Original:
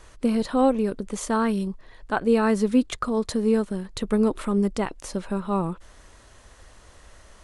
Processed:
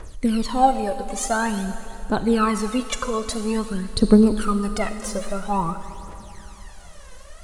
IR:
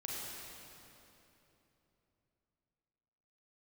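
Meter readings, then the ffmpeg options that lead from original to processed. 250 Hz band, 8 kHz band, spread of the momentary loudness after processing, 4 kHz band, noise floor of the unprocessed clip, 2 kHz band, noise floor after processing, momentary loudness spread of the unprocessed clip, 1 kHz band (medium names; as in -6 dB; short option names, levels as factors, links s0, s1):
+2.0 dB, +7.5 dB, 14 LU, +6.0 dB, -52 dBFS, +3.5 dB, -41 dBFS, 10 LU, +6.5 dB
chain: -filter_complex "[0:a]aphaser=in_gain=1:out_gain=1:delay=2:decay=0.8:speed=0.49:type=triangular,asplit=2[s0][s1];[1:a]atrim=start_sample=2205,lowshelf=f=330:g=-7.5,highshelf=f=7400:g=11.5[s2];[s1][s2]afir=irnorm=-1:irlink=0,volume=0.422[s3];[s0][s3]amix=inputs=2:normalize=0,volume=0.841"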